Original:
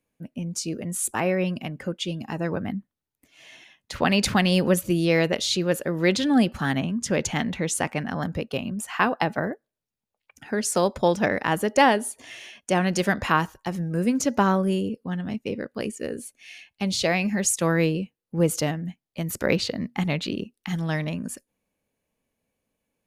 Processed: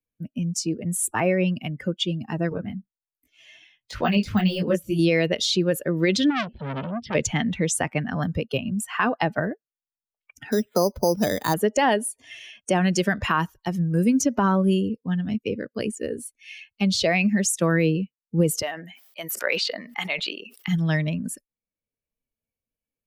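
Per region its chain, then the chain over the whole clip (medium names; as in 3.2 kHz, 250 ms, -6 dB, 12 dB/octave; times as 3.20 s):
2.49–4.99 s: de-esser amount 65% + detune thickener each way 46 cents
6.30–7.15 s: low-pass 5 kHz 24 dB/octave + static phaser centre 2.9 kHz, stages 4 + transformer saturation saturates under 2.4 kHz
10.52–11.54 s: dynamic bell 1.7 kHz, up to -4 dB, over -40 dBFS, Q 1.5 + careless resampling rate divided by 8×, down filtered, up hold
18.62–20.68 s: high-pass 670 Hz + decay stretcher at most 61 dB/s
whole clip: expander on every frequency bin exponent 1.5; peak limiter -17.5 dBFS; three bands compressed up and down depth 40%; trim +7 dB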